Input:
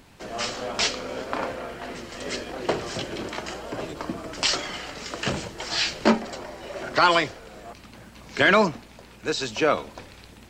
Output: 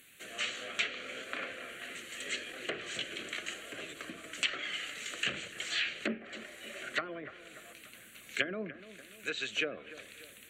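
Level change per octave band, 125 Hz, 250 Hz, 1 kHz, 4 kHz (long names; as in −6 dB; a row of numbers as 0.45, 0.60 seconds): −18.5, −16.0, −20.5, −8.5 decibels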